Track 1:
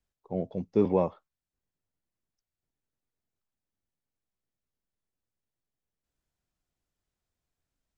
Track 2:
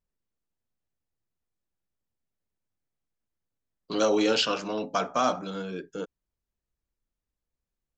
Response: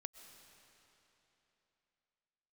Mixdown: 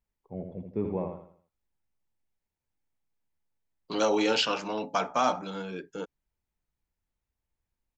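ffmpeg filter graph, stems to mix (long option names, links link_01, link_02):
-filter_complex "[0:a]lowpass=2300,lowshelf=frequency=120:gain=11,volume=-9dB,asplit=2[link_01][link_02];[link_02]volume=-6dB[link_03];[1:a]equalizer=frequency=870:width_type=o:width=0.27:gain=9,volume=-2.5dB[link_04];[link_03]aecho=0:1:81|162|243|324|405:1|0.37|0.137|0.0507|0.0187[link_05];[link_01][link_04][link_05]amix=inputs=3:normalize=0,equalizer=frequency=2200:width_type=o:width=0.69:gain=4.5"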